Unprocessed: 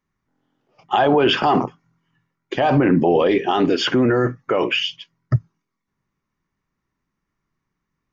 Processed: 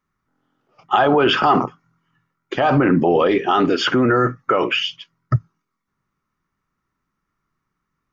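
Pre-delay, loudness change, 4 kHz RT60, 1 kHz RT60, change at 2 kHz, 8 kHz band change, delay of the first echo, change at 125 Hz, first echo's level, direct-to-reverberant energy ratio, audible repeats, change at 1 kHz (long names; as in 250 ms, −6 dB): no reverb audible, +1.0 dB, no reverb audible, no reverb audible, +2.5 dB, can't be measured, no echo audible, 0.0 dB, no echo audible, no reverb audible, no echo audible, +2.5 dB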